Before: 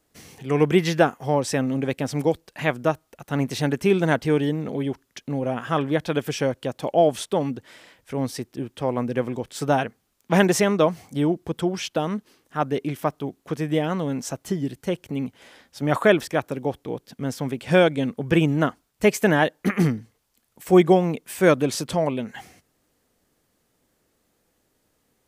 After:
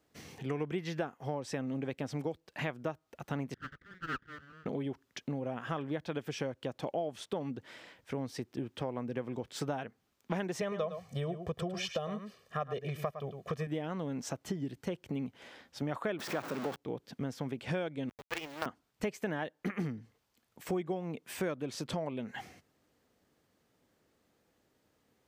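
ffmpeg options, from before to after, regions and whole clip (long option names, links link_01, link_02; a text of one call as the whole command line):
ffmpeg -i in.wav -filter_complex "[0:a]asettb=1/sr,asplit=3[link_01][link_02][link_03];[link_01]atrim=end=3.544[link_04];[link_02]atrim=start=3.54:end=4.66,asetpts=PTS-STARTPTS,afade=type=in:duration=0.004:curve=qsin,afade=type=out:start_time=1.116:duration=0.004:curve=qsin,asuperpass=centerf=830:order=20:qfactor=1.5,aeval=exprs='abs(val(0))':channel_layout=same[link_05];[link_03]atrim=start=4.656[link_06];[link_04][link_05]acrossfade=duration=0.004:curve1=hsin:curve2=qsin[link_07];[link_07][link_06]acrossfade=duration=0.004:curve1=qsin:curve2=hsin,asettb=1/sr,asplit=3[link_08][link_09][link_10];[link_08]atrim=end=10.614[link_11];[link_09]atrim=start=10.61:end=13.67,asetpts=PTS-STARTPTS,afade=type=in:duration=0.004:curve=qsin,afade=type=out:start_time=3.056:duration=0.004:curve=qsin,aecho=1:1:1.7:0.92,atrim=end_sample=134946,aecho=1:1:107:0.266,atrim=end_sample=134946[link_12];[link_10]atrim=start=13.666[link_13];[link_11][link_12]acrossfade=duration=0.004:curve1=hsin:curve2=qsin[link_14];[link_14][link_13]acrossfade=duration=0.004:curve1=qsin:curve2=hsin,asettb=1/sr,asplit=3[link_15][link_16][link_17];[link_15]atrim=end=16.194[link_18];[link_16]atrim=start=16.19:end=16.76,asetpts=PTS-STARTPTS,afade=type=in:duration=0.004:curve=qsin,afade=type=out:start_time=0.566:duration=0.004:curve=qsin,aeval=exprs='val(0)+0.5*0.075*sgn(val(0))':channel_layout=same,highpass=frequency=150:width=0.5412,highpass=frequency=150:width=1.3066,equalizer=frequency=1200:width_type=o:width=0.92:gain=5[link_19];[link_17]atrim=start=16.756[link_20];[link_18][link_19]acrossfade=duration=0.004:curve1=hsin:curve2=qsin[link_21];[link_21][link_20]acrossfade=duration=0.004:curve1=qsin:curve2=hsin,asettb=1/sr,asplit=3[link_22][link_23][link_24];[link_22]atrim=end=18.094[link_25];[link_23]atrim=start=18.09:end=18.66,asetpts=PTS-STARTPTS,afade=type=in:duration=0.004:curve=qsin,afade=type=out:start_time=0.566:duration=0.004:curve=qsin,highpass=760,aemphasis=mode=reproduction:type=cd,acrusher=bits=4:dc=4:mix=0:aa=0.000001[link_26];[link_24]atrim=start=18.656[link_27];[link_25][link_26]acrossfade=duration=0.004:curve1=hsin:curve2=qsin[link_28];[link_28][link_27]acrossfade=duration=0.004:curve1=qsin:curve2=hsin,highpass=60,equalizer=frequency=11000:width_type=o:width=1.2:gain=-10,acompressor=threshold=-30dB:ratio=6,volume=-3dB" out.wav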